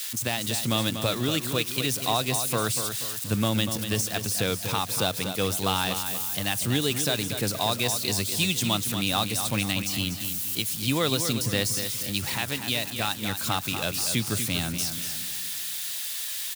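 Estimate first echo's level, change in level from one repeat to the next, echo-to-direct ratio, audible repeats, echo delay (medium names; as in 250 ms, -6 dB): -8.5 dB, -7.0 dB, -7.5 dB, 4, 241 ms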